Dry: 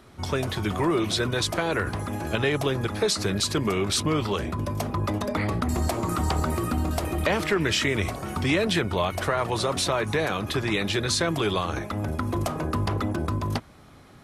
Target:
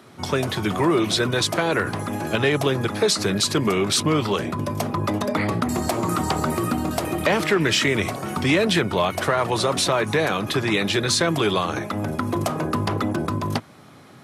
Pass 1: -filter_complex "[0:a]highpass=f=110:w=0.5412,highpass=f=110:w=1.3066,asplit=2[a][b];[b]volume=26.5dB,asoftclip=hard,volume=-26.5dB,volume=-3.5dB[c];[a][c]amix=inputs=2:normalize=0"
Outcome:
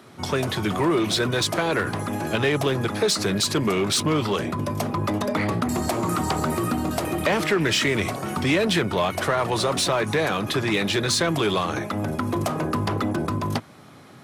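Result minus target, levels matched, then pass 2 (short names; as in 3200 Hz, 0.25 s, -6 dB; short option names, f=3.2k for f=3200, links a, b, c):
overloaded stage: distortion +16 dB
-filter_complex "[0:a]highpass=f=110:w=0.5412,highpass=f=110:w=1.3066,asplit=2[a][b];[b]volume=17dB,asoftclip=hard,volume=-17dB,volume=-3.5dB[c];[a][c]amix=inputs=2:normalize=0"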